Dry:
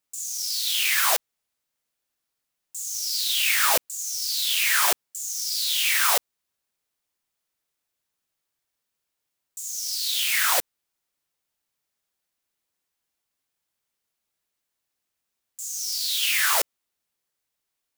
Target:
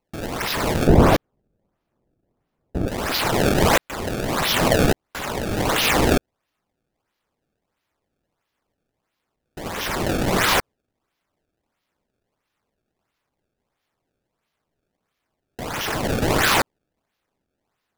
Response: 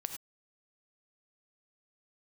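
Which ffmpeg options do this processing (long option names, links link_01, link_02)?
-filter_complex "[0:a]acrusher=samples=25:mix=1:aa=0.000001:lfo=1:lforange=40:lforate=1.5,asettb=1/sr,asplit=3[link_01][link_02][link_03];[link_01]atrim=end=0.874[link_04];[link_02]atrim=start=0.87:end=2.88,asetpts=PTS-STARTPTS,afade=type=in:duration=0.004:curve=qsin,afade=type=out:start_time=2.006:duration=0.004:curve=qsin,tiltshelf=frequency=970:gain=9.5[link_05];[link_03]atrim=start=2.876[link_06];[link_04][link_05]acrossfade=duration=0.004:curve1=hsin:curve2=qsin[link_07];[link_07][link_06]acrossfade=duration=0.004:curve1=qsin:curve2=hsin,volume=3.5dB"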